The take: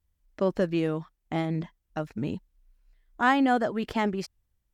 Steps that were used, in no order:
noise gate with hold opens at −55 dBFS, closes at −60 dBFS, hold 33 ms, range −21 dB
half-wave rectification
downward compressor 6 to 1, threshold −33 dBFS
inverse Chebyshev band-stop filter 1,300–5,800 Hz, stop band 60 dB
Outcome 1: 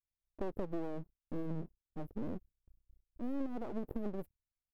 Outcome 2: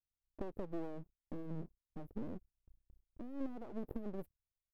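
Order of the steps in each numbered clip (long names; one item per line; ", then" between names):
inverse Chebyshev band-stop filter, then noise gate with hold, then half-wave rectification, then downward compressor
downward compressor, then inverse Chebyshev band-stop filter, then half-wave rectification, then noise gate with hold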